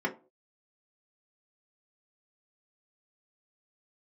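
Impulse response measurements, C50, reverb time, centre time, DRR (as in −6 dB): 15.0 dB, non-exponential decay, 11 ms, −2.0 dB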